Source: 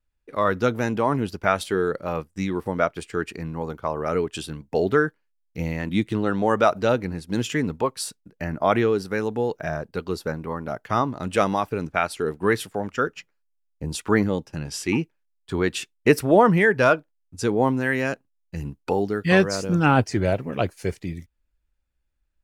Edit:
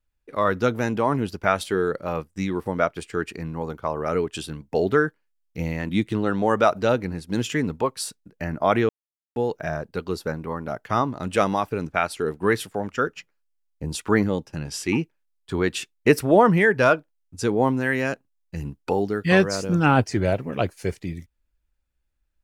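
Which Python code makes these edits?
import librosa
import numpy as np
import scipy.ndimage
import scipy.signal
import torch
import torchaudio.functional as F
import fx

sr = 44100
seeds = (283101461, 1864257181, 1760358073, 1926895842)

y = fx.edit(x, sr, fx.silence(start_s=8.89, length_s=0.47), tone=tone)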